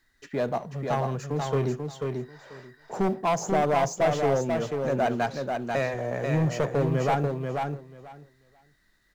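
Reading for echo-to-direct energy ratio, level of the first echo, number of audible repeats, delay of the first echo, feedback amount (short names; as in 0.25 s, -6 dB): -4.5 dB, -4.5 dB, 2, 0.489 s, 16%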